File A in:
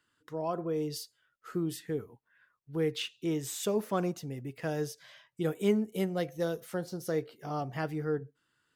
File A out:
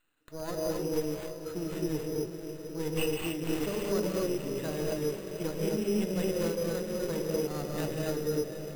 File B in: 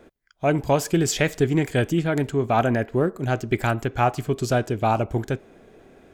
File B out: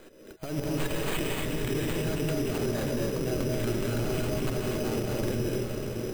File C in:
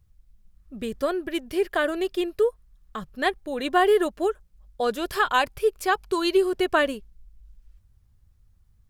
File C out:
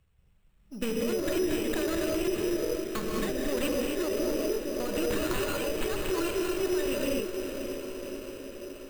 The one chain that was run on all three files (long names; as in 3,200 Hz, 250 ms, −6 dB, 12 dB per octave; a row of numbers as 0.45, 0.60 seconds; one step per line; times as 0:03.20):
samples sorted by size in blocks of 8 samples
high-pass filter 210 Hz 6 dB per octave
in parallel at −10 dB: comparator with hysteresis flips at −27 dBFS
on the sum: compressor whose output falls as the input rises −28 dBFS, ratio −1
flat-topped bell 1,300 Hz +15 dB
on a send: feedback delay with all-pass diffusion 559 ms, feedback 65%, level −9 dB
on the sum: reverb whose tail is shaped and stops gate 290 ms rising, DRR −4 dB
brick-wall band-stop 640–2,500 Hz
brickwall limiter −17.5 dBFS
decimation without filtering 8×
high-shelf EQ 10,000 Hz +4 dB
level −2.5 dB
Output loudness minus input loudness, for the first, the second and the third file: +1.5, −7.0, −6.0 LU